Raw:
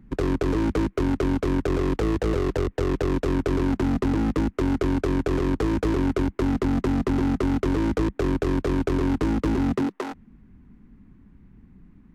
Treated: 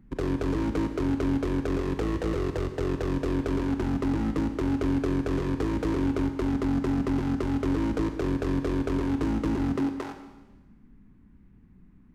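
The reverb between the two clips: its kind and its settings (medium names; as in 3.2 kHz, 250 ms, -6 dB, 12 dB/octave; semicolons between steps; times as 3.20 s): Schroeder reverb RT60 1.2 s, combs from 29 ms, DRR 7 dB; trim -5 dB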